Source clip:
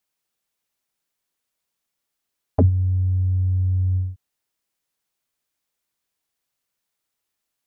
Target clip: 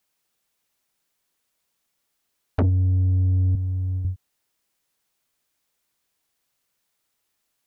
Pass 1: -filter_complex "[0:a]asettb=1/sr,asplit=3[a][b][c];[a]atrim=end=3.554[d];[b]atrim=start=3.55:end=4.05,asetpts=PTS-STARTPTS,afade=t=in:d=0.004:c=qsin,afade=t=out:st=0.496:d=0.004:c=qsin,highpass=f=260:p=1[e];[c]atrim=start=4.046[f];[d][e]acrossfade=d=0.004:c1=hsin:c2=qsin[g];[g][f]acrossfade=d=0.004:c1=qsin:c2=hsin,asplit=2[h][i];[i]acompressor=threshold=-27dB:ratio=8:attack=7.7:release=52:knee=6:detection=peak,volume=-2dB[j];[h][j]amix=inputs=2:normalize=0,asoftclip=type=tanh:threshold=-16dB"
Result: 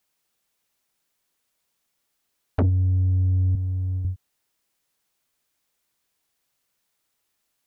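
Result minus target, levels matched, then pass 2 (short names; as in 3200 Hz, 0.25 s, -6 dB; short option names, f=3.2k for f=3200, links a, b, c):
compressor: peak gain reduction +6.5 dB
-filter_complex "[0:a]asettb=1/sr,asplit=3[a][b][c];[a]atrim=end=3.554[d];[b]atrim=start=3.55:end=4.05,asetpts=PTS-STARTPTS,afade=t=in:d=0.004:c=qsin,afade=t=out:st=0.496:d=0.004:c=qsin,highpass=f=260:p=1[e];[c]atrim=start=4.046[f];[d][e]acrossfade=d=0.004:c1=hsin:c2=qsin[g];[g][f]acrossfade=d=0.004:c1=qsin:c2=hsin,asplit=2[h][i];[i]acompressor=threshold=-19.5dB:ratio=8:attack=7.7:release=52:knee=6:detection=peak,volume=-2dB[j];[h][j]amix=inputs=2:normalize=0,asoftclip=type=tanh:threshold=-16dB"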